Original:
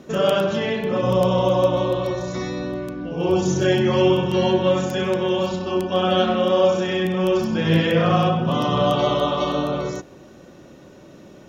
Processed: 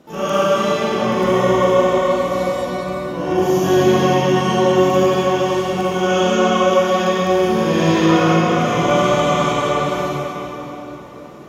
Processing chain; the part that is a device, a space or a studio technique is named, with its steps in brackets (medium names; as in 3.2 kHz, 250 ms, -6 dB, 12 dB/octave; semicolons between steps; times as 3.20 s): shimmer-style reverb (harmony voices +12 st -5 dB; reverberation RT60 4.0 s, pre-delay 40 ms, DRR -9.5 dB); trim -7.5 dB